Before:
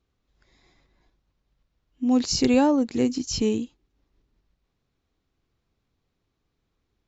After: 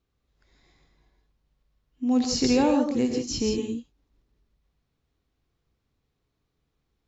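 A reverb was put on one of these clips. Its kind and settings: non-linear reverb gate 0.19 s rising, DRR 3 dB; gain -3 dB

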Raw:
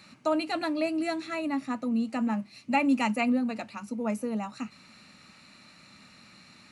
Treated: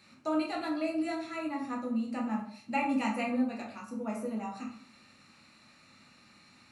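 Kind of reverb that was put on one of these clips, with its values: plate-style reverb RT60 0.6 s, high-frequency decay 0.6×, DRR -2 dB; gain -8.5 dB

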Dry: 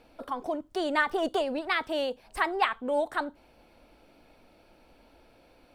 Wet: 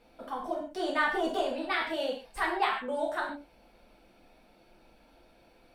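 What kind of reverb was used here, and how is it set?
non-linear reverb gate 0.18 s falling, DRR -3.5 dB; gain -6.5 dB

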